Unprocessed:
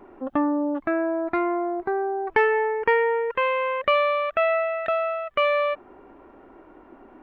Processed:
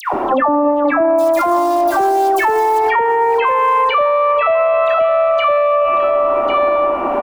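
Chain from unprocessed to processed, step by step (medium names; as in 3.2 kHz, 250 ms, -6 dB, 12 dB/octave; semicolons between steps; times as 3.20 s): 1.18–2.79 s: short-mantissa float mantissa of 2-bit; high-order bell 820 Hz +9 dB 1.3 oct; upward compressor, threshold -35 dBFS; phase dispersion lows, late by 135 ms, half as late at 1.2 kHz; 4.46–5.01 s: treble shelf 3.6 kHz +10 dB; delay 1097 ms -16 dB; on a send at -10 dB: reverberation RT60 3.0 s, pre-delay 46 ms; on the sum: loudness maximiser +24 dB; three bands compressed up and down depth 70%; trim -6.5 dB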